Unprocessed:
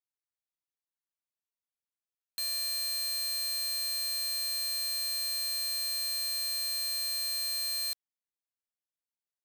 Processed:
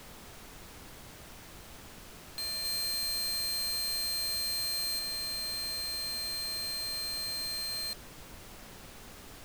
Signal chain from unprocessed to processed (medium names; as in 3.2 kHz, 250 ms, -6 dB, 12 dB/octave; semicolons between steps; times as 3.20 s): treble shelf 4.7 kHz -9 dB, from 2.65 s -4 dB, from 4.99 s -9.5 dB; added noise pink -51 dBFS; trim +2 dB